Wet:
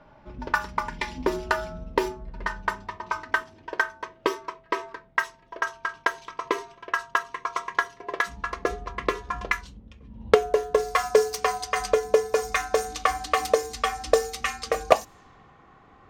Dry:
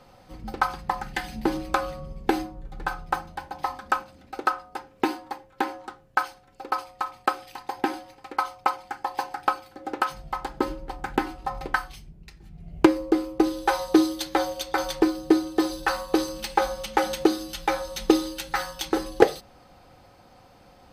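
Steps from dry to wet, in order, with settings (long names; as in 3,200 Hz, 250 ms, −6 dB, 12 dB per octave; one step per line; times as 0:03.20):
gliding playback speed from 114% → 146%
low-pass that shuts in the quiet parts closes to 2,200 Hz, open at −21.5 dBFS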